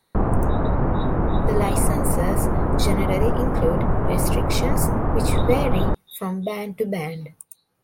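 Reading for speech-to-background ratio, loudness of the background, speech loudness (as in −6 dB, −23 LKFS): −4.5 dB, −23.0 LKFS, −27.5 LKFS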